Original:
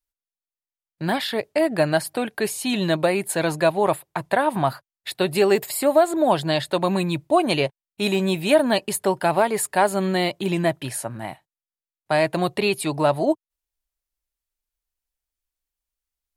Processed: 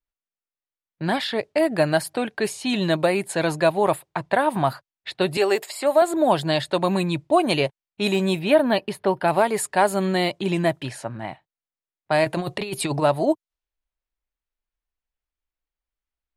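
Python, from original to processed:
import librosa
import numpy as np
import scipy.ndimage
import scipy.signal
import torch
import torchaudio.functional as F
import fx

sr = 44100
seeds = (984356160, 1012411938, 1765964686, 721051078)

y = fx.highpass(x, sr, hz=400.0, slope=12, at=(5.37, 6.02))
y = fx.peak_eq(y, sr, hz=7400.0, db=-15.0, octaves=0.91, at=(8.39, 9.28))
y = fx.env_lowpass(y, sr, base_hz=2800.0, full_db=-16.5)
y = fx.over_compress(y, sr, threshold_db=-25.0, ratio=-0.5, at=(12.24, 13.01), fade=0.02)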